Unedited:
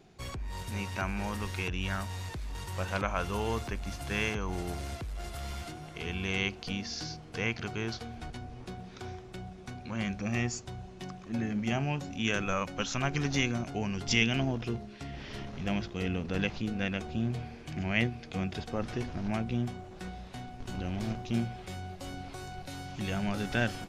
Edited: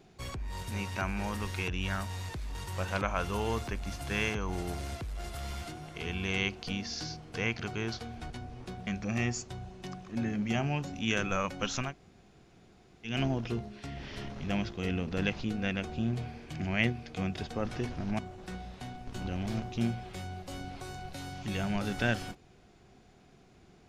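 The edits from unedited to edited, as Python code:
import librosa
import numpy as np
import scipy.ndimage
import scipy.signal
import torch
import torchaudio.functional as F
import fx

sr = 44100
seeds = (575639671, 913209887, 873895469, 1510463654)

y = fx.edit(x, sr, fx.cut(start_s=8.87, length_s=1.17),
    fx.room_tone_fill(start_s=13.04, length_s=1.24, crossfade_s=0.16),
    fx.cut(start_s=19.36, length_s=0.36), tone=tone)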